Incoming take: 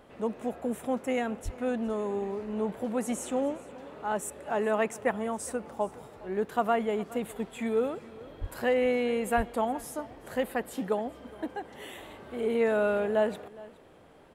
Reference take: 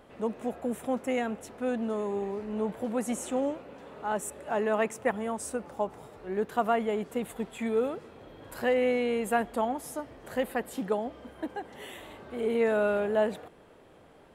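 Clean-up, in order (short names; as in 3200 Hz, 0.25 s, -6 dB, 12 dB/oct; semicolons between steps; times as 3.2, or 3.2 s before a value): 1.44–1.56 HPF 140 Hz 24 dB/oct; 8.4–8.52 HPF 140 Hz 24 dB/oct; 9.36–9.48 HPF 140 Hz 24 dB/oct; inverse comb 0.414 s -20.5 dB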